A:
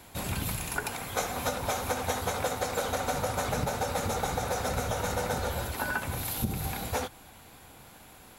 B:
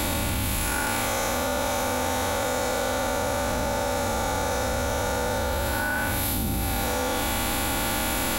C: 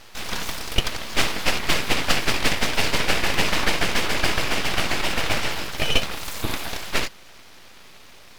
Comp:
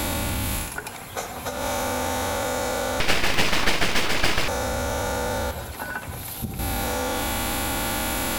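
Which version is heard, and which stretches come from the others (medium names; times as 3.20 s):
B
0.64–1.58 s: from A, crossfade 0.16 s
3.00–4.48 s: from C
5.51–6.59 s: from A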